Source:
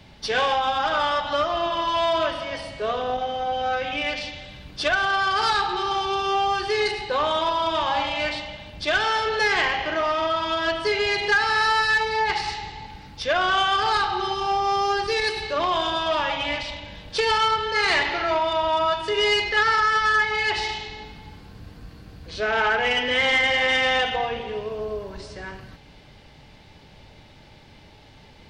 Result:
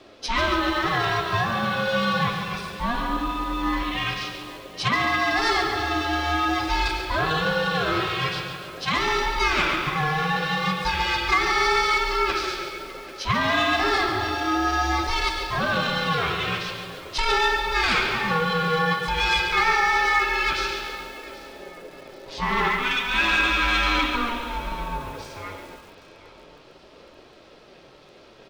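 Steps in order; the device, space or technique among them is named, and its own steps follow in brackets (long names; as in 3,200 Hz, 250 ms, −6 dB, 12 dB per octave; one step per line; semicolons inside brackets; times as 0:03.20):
0:22.68–0:23.14: high-pass filter 930 Hz 6 dB per octave
repeating echo 786 ms, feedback 38%, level −18 dB
alien voice (ring modulation 470 Hz; flanger 0.33 Hz, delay 2.5 ms, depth 9 ms, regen −50%)
feedback echo at a low word length 140 ms, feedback 55%, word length 8 bits, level −8.5 dB
level +6 dB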